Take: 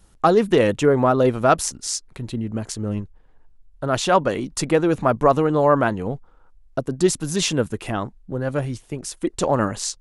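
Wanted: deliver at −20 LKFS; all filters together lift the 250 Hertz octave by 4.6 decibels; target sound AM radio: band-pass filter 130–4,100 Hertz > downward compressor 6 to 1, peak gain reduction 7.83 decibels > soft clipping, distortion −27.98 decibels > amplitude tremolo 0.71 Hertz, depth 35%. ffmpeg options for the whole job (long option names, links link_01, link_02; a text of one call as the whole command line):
ffmpeg -i in.wav -af "highpass=130,lowpass=4100,equalizer=frequency=250:width_type=o:gain=6.5,acompressor=threshold=-16dB:ratio=6,asoftclip=threshold=-6.5dB,tremolo=f=0.71:d=0.35,volume=5dB" out.wav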